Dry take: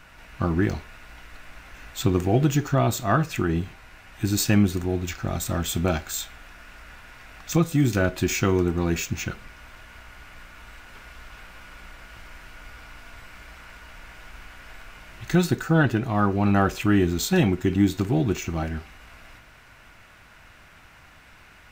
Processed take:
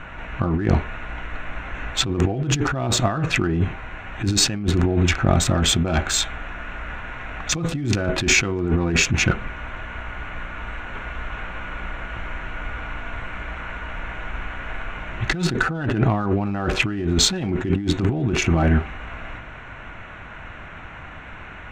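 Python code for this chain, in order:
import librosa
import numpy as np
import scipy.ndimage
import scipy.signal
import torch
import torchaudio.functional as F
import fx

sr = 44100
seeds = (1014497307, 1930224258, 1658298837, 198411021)

y = fx.wiener(x, sr, points=9)
y = scipy.signal.sosfilt(scipy.signal.butter(2, 6200.0, 'lowpass', fs=sr, output='sos'), y)
y = fx.over_compress(y, sr, threshold_db=-29.0, ratio=-1.0)
y = y * 10.0 ** (8.5 / 20.0)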